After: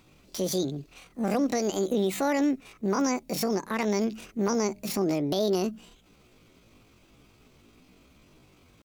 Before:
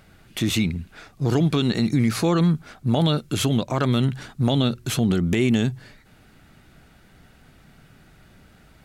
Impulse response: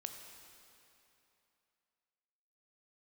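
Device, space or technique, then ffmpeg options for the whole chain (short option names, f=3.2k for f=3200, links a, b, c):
chipmunk voice: -af "asetrate=74167,aresample=44100,atempo=0.594604,volume=-6dB"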